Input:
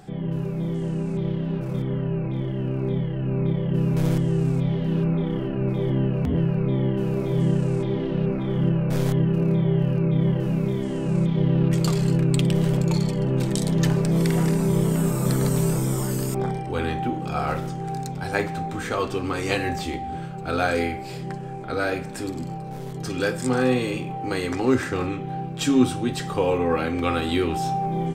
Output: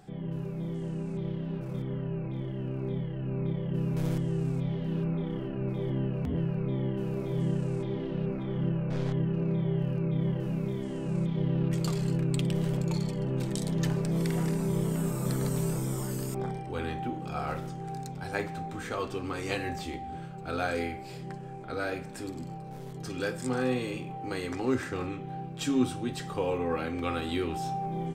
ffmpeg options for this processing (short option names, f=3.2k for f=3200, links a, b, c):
-filter_complex "[0:a]asettb=1/sr,asplit=3[a][b][c];[a]atrim=end=8.444[d];[b]atrim=start=8.44:end=9.59,asetpts=PTS-STARTPTS,afade=t=in:d=0.004:c=qsin,afade=t=out:st=1.146:d=0.004:c=qsin,lowpass=4.6k[e];[c]atrim=start=9.586[f];[d][e]acrossfade=d=0.004:c1=hsin:c2=qsin[g];[g][f]acrossfade=d=0.004:c1=qsin:c2=hsin,volume=-8dB"